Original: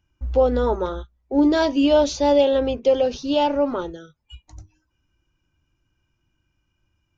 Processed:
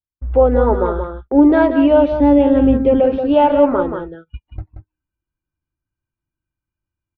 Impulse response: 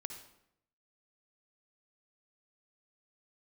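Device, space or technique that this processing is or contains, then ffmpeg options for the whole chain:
action camera in a waterproof case: -filter_complex "[0:a]agate=range=-29dB:threshold=-38dB:ratio=16:detection=peak,asettb=1/sr,asplit=3[link_01][link_02][link_03];[link_01]atrim=end=2.124[link_04];[link_02]atrim=start=2.12:end=3,asetpts=PTS-STARTPTS,afade=type=in:duration=0.004:curve=qsin,afade=type=out:start_time=0.876:duration=0.004:curve=qsin,lowshelf=frequency=350:width_type=q:width=1.5:gain=9[link_05];[link_03]atrim=start=2.996[link_06];[link_04][link_05]acrossfade=duration=0.004:curve1=hsin:curve2=qsin[link_07];[link_07][link_06]acrossfade=duration=0.004:curve1=qsin:curve2=hsin,lowpass=frequency=2200:width=0.5412,lowpass=frequency=2200:width=1.3066,aecho=1:1:180:0.398,dynaudnorm=framelen=170:gausssize=3:maxgain=15.5dB,volume=-1dB" -ar 22050 -c:a aac -b:a 96k

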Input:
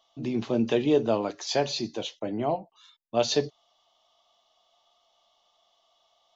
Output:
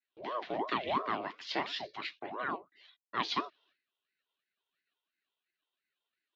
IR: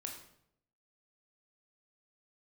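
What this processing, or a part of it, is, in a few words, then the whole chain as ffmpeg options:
voice changer toy: -af "agate=range=-33dB:threshold=-56dB:ratio=3:detection=peak,aeval=exprs='val(0)*sin(2*PI*530*n/s+530*0.65/2.9*sin(2*PI*2.9*n/s))':channel_layout=same,highpass=420,equalizer=frequency=500:width_type=q:width=4:gain=-10,equalizer=frequency=870:width_type=q:width=4:gain=-8,equalizer=frequency=1300:width_type=q:width=4:gain=-6,equalizer=frequency=1900:width_type=q:width=4:gain=6,lowpass=frequency=3900:width=0.5412,lowpass=frequency=3900:width=1.3066"

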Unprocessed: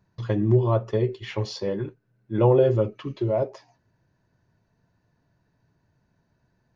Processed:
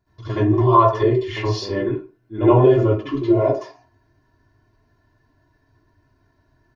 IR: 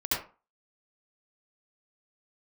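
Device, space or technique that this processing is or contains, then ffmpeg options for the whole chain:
microphone above a desk: -filter_complex "[0:a]aecho=1:1:2.9:0.69[link_01];[1:a]atrim=start_sample=2205[link_02];[link_01][link_02]afir=irnorm=-1:irlink=0,asettb=1/sr,asplit=3[link_03][link_04][link_05];[link_03]atrim=end=0.534[link_06];[link_04]atrim=start=0.53:end=1.03,asetpts=PTS-STARTPTS,afade=type=in:duration=0.004:curve=qsin,afade=type=out:start_time=0.496:duration=0.004:curve=qsin,equalizer=frequency=250:width_type=o:width=1:gain=-10,equalizer=frequency=1000:width_type=o:width=1:gain=9,equalizer=frequency=4000:width_type=o:width=1:gain=5[link_07];[link_05]atrim=start=1.026[link_08];[link_06][link_07]acrossfade=duration=0.004:curve1=hsin:curve2=qsin[link_09];[link_09][link_08]acrossfade=duration=0.004:curve1=qsin:curve2=hsin,volume=-2.5dB"

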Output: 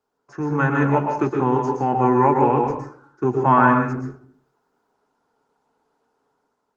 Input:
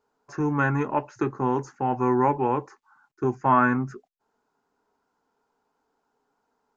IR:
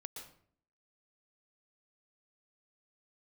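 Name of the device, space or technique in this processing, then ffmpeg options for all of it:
far-field microphone of a smart speaker: -filter_complex "[1:a]atrim=start_sample=2205[link_01];[0:a][link_01]afir=irnorm=-1:irlink=0,highpass=frequency=93:width=0.5412,highpass=frequency=93:width=1.3066,dynaudnorm=framelen=160:gausssize=7:maxgain=6dB,volume=4dB" -ar 48000 -c:a libopus -b:a 20k

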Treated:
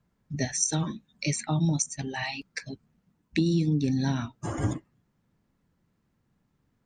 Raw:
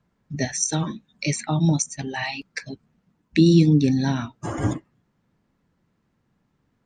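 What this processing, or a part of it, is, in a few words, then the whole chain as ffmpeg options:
ASMR close-microphone chain: -af "lowshelf=frequency=150:gain=5,acompressor=threshold=-16dB:ratio=6,highshelf=frequency=6300:gain=6,volume=-5dB"

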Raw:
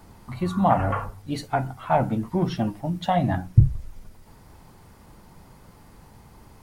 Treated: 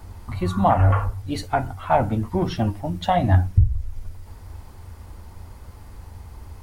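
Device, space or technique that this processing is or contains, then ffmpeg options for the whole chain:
car stereo with a boomy subwoofer: -af "lowshelf=frequency=110:width_type=q:width=3:gain=7.5,alimiter=limit=-8.5dB:level=0:latency=1:release=497,volume=3dB"

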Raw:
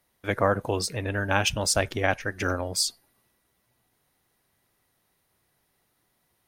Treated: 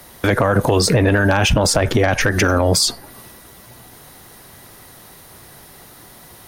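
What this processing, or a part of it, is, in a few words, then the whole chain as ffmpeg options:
mastering chain: -filter_complex "[0:a]equalizer=frequency=2400:width_type=o:width=0.77:gain=-3.5,acrossover=split=180|2300[link_01][link_02][link_03];[link_01]acompressor=threshold=-36dB:ratio=4[link_04];[link_02]acompressor=threshold=-27dB:ratio=4[link_05];[link_03]acompressor=threshold=-41dB:ratio=4[link_06];[link_04][link_05][link_06]amix=inputs=3:normalize=0,acompressor=threshold=-32dB:ratio=2.5,asoftclip=type=tanh:threshold=-20.5dB,asoftclip=type=hard:threshold=-24.5dB,alimiter=level_in=35.5dB:limit=-1dB:release=50:level=0:latency=1,volume=-6dB"

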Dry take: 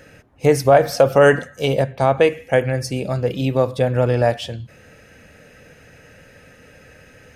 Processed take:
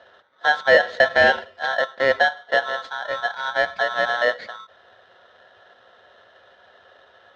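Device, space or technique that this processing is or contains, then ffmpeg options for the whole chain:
ring modulator pedal into a guitar cabinet: -af "bandreject=frequency=1500:width=20,aeval=exprs='val(0)*sgn(sin(2*PI*1200*n/s))':channel_layout=same,highpass=99,equalizer=frequency=140:width_type=q:width=4:gain=-8,equalizer=frequency=350:width_type=q:width=4:gain=-5,equalizer=frequency=530:width_type=q:width=4:gain=8,equalizer=frequency=1100:width_type=q:width=4:gain=-9,equalizer=frequency=1700:width_type=q:width=4:gain=3,equalizer=frequency=2600:width_type=q:width=4:gain=-10,lowpass=frequency=3600:width=0.5412,lowpass=frequency=3600:width=1.3066,volume=-4dB"

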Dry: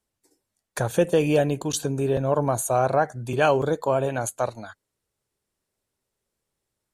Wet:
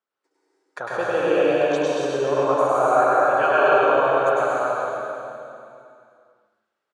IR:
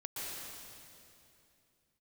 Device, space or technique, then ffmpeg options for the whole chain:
station announcement: -filter_complex "[0:a]highpass=380,lowpass=3500,equalizer=frequency=1300:width_type=o:width=0.53:gain=10,aecho=1:1:102|224.5:0.891|0.251[link_01];[1:a]atrim=start_sample=2205[link_02];[link_01][link_02]afir=irnorm=-1:irlink=0"

